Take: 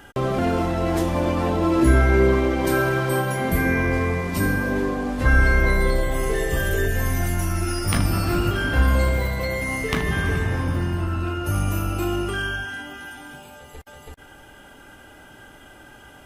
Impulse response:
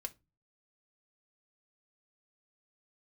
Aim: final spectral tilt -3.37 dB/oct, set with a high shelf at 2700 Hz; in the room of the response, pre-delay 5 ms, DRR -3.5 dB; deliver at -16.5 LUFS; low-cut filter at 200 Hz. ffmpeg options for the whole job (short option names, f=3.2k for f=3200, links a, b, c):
-filter_complex "[0:a]highpass=200,highshelf=f=2.7k:g=-3,asplit=2[a][b];[1:a]atrim=start_sample=2205,adelay=5[c];[b][c]afir=irnorm=-1:irlink=0,volume=5.5dB[d];[a][d]amix=inputs=2:normalize=0,volume=3dB"